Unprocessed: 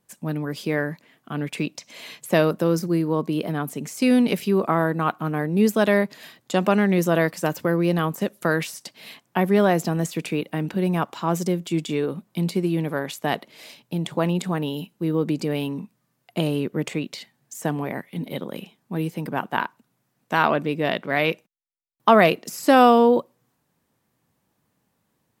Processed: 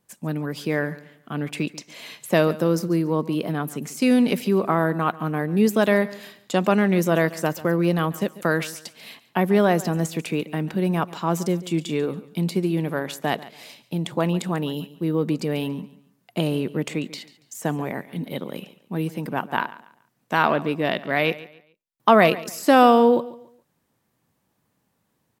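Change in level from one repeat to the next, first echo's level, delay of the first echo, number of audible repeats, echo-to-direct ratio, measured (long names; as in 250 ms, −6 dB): −10.5 dB, −18.0 dB, 141 ms, 2, −17.5 dB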